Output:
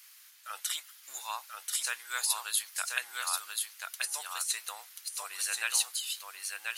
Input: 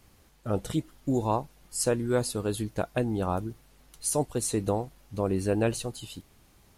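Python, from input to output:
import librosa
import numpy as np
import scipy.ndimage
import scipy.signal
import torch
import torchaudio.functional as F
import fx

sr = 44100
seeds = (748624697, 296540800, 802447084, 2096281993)

p1 = fx.octave_divider(x, sr, octaves=1, level_db=0.0)
p2 = scipy.signal.sosfilt(scipy.signal.butter(4, 1400.0, 'highpass', fs=sr, output='sos'), p1)
p3 = fx.high_shelf(p2, sr, hz=4500.0, db=9.5)
p4 = fx.over_compress(p3, sr, threshold_db=-28.0, ratio=-0.5)
p5 = fx.peak_eq(p4, sr, hz=8200.0, db=-3.5, octaves=0.69)
p6 = p5 + fx.echo_single(p5, sr, ms=1035, db=-3.5, dry=0)
y = F.gain(torch.from_numpy(p6), 1.5).numpy()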